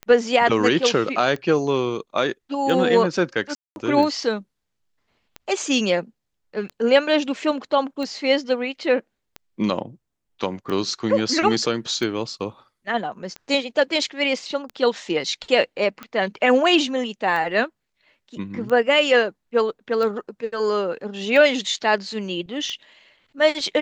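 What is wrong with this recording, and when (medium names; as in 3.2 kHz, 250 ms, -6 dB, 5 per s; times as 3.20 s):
tick 45 rpm -18 dBFS
3.55–3.76 s: dropout 211 ms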